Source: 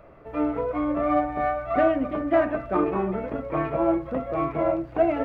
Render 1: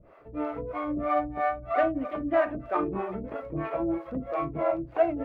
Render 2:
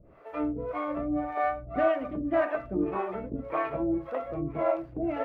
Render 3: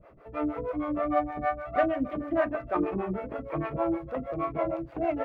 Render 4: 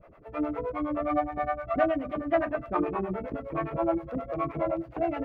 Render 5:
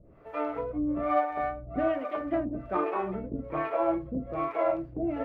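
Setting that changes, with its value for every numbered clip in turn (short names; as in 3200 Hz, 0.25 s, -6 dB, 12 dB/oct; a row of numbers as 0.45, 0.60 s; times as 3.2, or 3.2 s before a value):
harmonic tremolo, rate: 3.1, 1.8, 6.4, 9.6, 1.2 Hz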